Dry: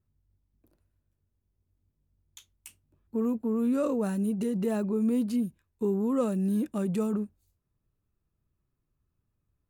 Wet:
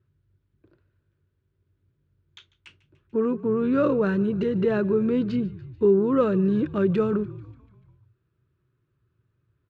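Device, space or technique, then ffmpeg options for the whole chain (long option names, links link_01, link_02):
frequency-shifting delay pedal into a guitar cabinet: -filter_complex "[0:a]asplit=7[link_01][link_02][link_03][link_04][link_05][link_06][link_07];[link_02]adelay=146,afreqshift=-51,volume=-21dB[link_08];[link_03]adelay=292,afreqshift=-102,volume=-24.7dB[link_09];[link_04]adelay=438,afreqshift=-153,volume=-28.5dB[link_10];[link_05]adelay=584,afreqshift=-204,volume=-32.2dB[link_11];[link_06]adelay=730,afreqshift=-255,volume=-36dB[link_12];[link_07]adelay=876,afreqshift=-306,volume=-39.7dB[link_13];[link_01][link_08][link_09][link_10][link_11][link_12][link_13]amix=inputs=7:normalize=0,highpass=81,equalizer=frequency=120:width_type=q:width=4:gain=9,equalizer=frequency=230:width_type=q:width=4:gain=-7,equalizer=frequency=370:width_type=q:width=4:gain=7,equalizer=frequency=760:width_type=q:width=4:gain=-9,equalizer=frequency=1500:width_type=q:width=4:gain=8,lowpass=frequency=3900:width=0.5412,lowpass=frequency=3900:width=1.3066,volume=7dB"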